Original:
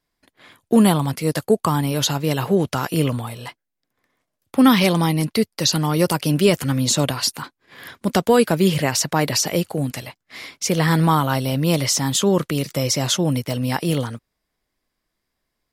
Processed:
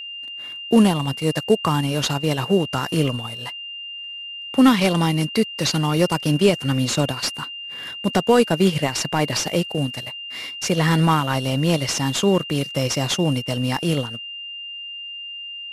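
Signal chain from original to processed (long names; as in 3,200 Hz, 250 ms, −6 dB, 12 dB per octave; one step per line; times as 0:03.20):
variable-slope delta modulation 64 kbit/s
transient designer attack 0 dB, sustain −8 dB
steady tone 2,800 Hz −31 dBFS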